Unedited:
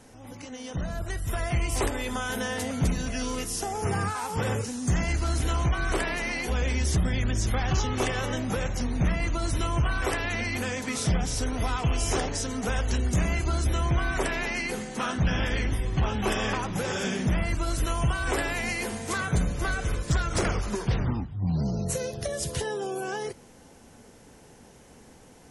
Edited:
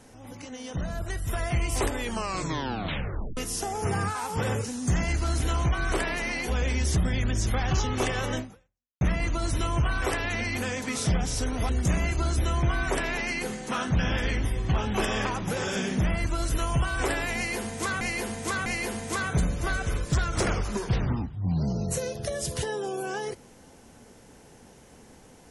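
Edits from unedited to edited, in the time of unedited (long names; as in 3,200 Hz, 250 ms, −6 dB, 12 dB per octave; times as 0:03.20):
0:01.99: tape stop 1.38 s
0:08.39–0:09.01: fade out exponential
0:11.69–0:12.97: remove
0:18.64–0:19.29: repeat, 3 plays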